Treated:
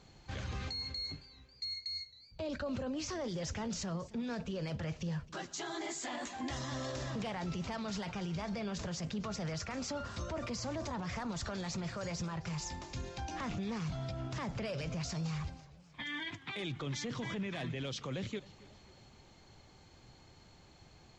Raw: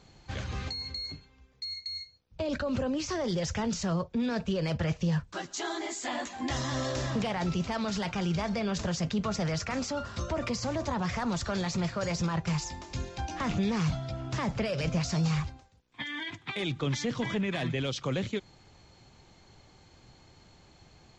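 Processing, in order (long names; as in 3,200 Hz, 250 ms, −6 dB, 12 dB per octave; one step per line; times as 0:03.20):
brickwall limiter −29 dBFS, peak gain reduction 9.5 dB
feedback echo with a swinging delay time 269 ms, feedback 58%, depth 134 cents, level −20.5 dB
level −2.5 dB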